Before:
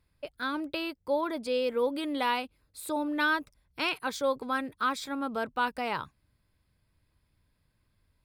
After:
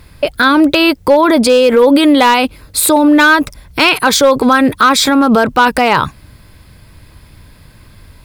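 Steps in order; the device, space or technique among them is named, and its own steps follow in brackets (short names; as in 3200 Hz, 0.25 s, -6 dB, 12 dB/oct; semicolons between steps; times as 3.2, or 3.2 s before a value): loud club master (compressor 2:1, threshold -30 dBFS, peak gain reduction 4.5 dB; hard clip -25 dBFS, distortion -23 dB; maximiser +33 dB); gain -1 dB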